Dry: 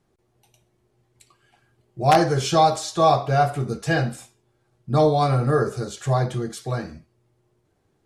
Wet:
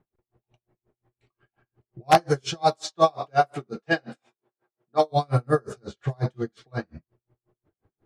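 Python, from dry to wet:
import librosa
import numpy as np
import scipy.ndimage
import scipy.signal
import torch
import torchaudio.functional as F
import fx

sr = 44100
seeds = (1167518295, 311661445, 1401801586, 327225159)

y = fx.highpass(x, sr, hz=fx.line((2.62, 140.0), (5.11, 400.0)), slope=12, at=(2.62, 5.11), fade=0.02)
y = fx.env_lowpass(y, sr, base_hz=1800.0, full_db=-15.0)
y = y * 10.0 ** (-39 * (0.5 - 0.5 * np.cos(2.0 * np.pi * 5.6 * np.arange(len(y)) / sr)) / 20.0)
y = F.gain(torch.from_numpy(y), 2.5).numpy()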